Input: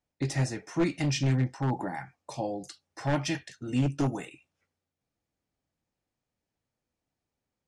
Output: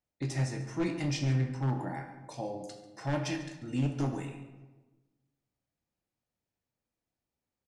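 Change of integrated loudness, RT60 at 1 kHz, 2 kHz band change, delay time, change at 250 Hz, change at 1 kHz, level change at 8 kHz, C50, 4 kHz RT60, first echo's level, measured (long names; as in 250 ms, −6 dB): −3.5 dB, 1.1 s, −4.5 dB, 141 ms, −3.5 dB, −4.5 dB, −5.0 dB, 7.0 dB, 0.70 s, −15.0 dB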